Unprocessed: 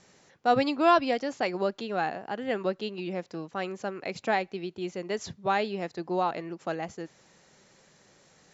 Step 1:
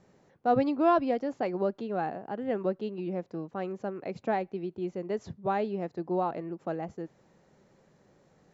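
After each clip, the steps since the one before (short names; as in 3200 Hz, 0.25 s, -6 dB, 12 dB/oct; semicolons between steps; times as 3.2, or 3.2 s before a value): tilt shelf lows +9 dB, about 1500 Hz; gain -7.5 dB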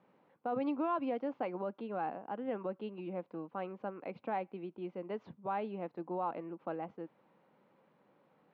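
limiter -22 dBFS, peak gain reduction 9 dB; speaker cabinet 260–3000 Hz, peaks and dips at 390 Hz -8 dB, 660 Hz -5 dB, 1000 Hz +3 dB, 1800 Hz -7 dB; gain -1.5 dB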